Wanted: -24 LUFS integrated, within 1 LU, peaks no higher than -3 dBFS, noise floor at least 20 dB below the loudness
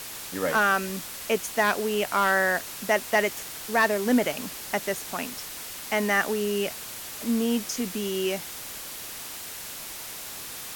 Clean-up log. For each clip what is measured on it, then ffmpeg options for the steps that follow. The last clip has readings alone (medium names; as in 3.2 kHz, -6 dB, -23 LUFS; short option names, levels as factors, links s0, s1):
noise floor -39 dBFS; noise floor target -47 dBFS; loudness -27.0 LUFS; peak level -11.5 dBFS; loudness target -24.0 LUFS
-> -af "afftdn=nr=8:nf=-39"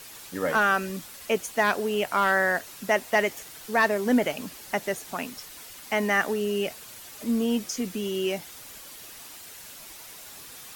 noise floor -45 dBFS; noise floor target -47 dBFS
-> -af "afftdn=nr=6:nf=-45"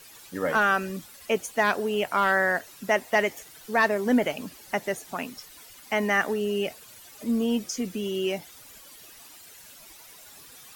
noise floor -49 dBFS; loudness -26.0 LUFS; peak level -12.0 dBFS; loudness target -24.0 LUFS
-> -af "volume=1.26"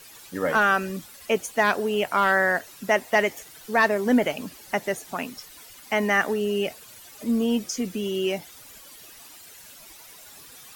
loudness -24.0 LUFS; peak level -10.0 dBFS; noise floor -47 dBFS